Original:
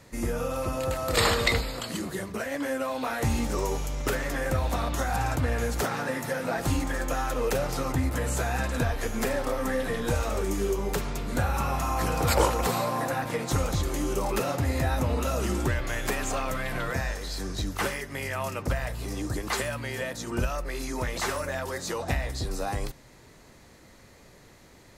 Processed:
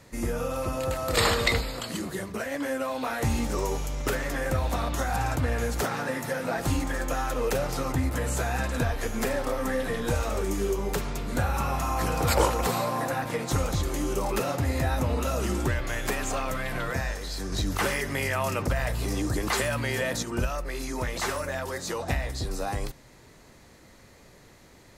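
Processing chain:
0:17.52–0:20.23: envelope flattener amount 50%

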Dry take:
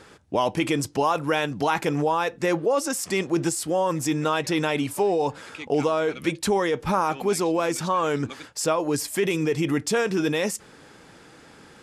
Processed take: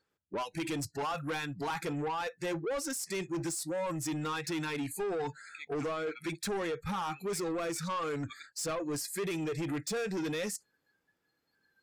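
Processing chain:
noise reduction from a noise print of the clip's start 27 dB
soft clipping −25 dBFS, distortion −10 dB
level −5.5 dB

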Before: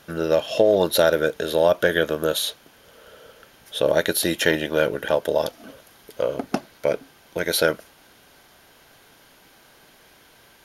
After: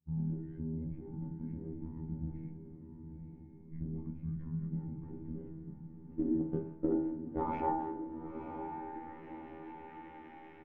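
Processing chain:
meter weighting curve D
downward expander −35 dBFS
downward compressor 12 to 1, threshold −21 dBFS, peak gain reduction 13 dB
tube saturation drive 23 dB, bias 0.45
chorus effect 0.19 Hz, delay 15.5 ms, depth 2.7 ms
low-pass filter sweep 270 Hz → 3,800 Hz, 0:05.37–0:09.34
pitch shifter −9.5 semitones
phases set to zero 80.1 Hz
feedback delay with all-pass diffusion 985 ms, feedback 54%, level −8 dB
on a send at −3 dB: convolution reverb RT60 0.65 s, pre-delay 3 ms
on the sum: level +2.5 dB

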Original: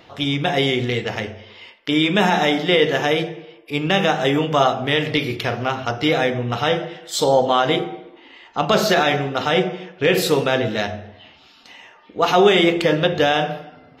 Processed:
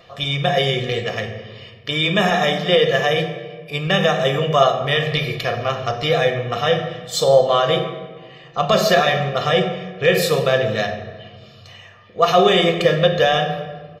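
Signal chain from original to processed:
comb filter 1.7 ms, depth 74%
rectangular room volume 1,700 cubic metres, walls mixed, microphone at 0.82 metres
level −2 dB

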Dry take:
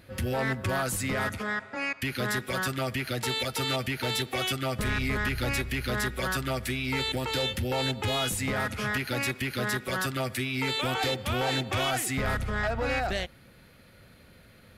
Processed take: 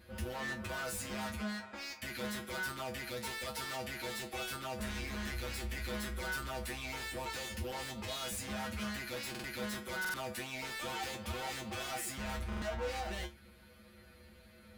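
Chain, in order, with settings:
gain into a clipping stage and back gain 34 dB
tuned comb filter 71 Hz, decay 0.19 s, harmonics odd, mix 100%
buffer that repeats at 0:09.30/0:10.00/0:12.48, samples 2,048, times 2
level +5 dB

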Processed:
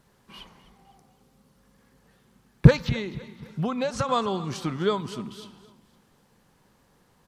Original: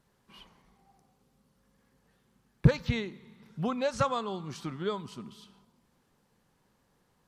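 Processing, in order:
0:02.72–0:04.09: downward compressor 6 to 1, threshold −32 dBFS, peak gain reduction 10 dB
repeating echo 256 ms, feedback 41%, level −18 dB
level +8 dB

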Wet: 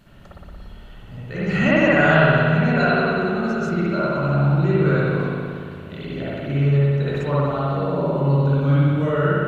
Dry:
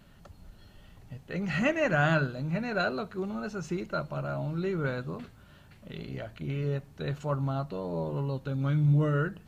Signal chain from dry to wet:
spring reverb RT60 2.3 s, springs 57 ms, chirp 40 ms, DRR −9 dB
level +2.5 dB

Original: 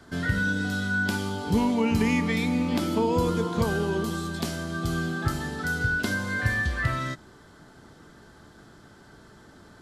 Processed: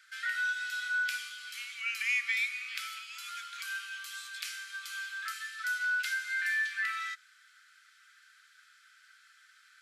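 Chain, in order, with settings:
Butterworth high-pass 1,300 Hz 96 dB per octave
parametric band 2,400 Hz +9 dB 0.39 octaves
level −4 dB

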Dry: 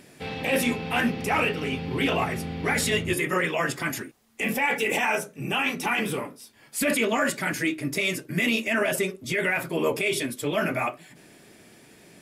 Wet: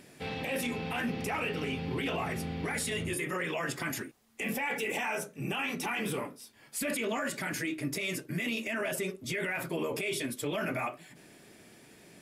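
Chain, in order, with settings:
0:02.65–0:03.22: parametric band 9,400 Hz +7 dB 0.32 octaves
brickwall limiter −21 dBFS, peak gain reduction 9.5 dB
level −3.5 dB

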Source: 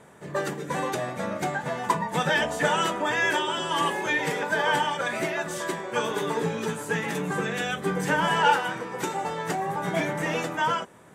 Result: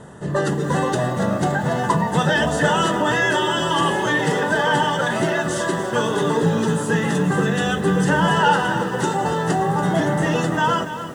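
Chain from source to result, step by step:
Butterworth low-pass 11,000 Hz 96 dB per octave
low-shelf EQ 230 Hz +11 dB
in parallel at +2.5 dB: brickwall limiter −21 dBFS, peak gain reduction 13.5 dB
on the sum: Butterworth band-reject 2,300 Hz, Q 4.2
feedback echo at a low word length 285 ms, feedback 55%, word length 7 bits, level −11 dB

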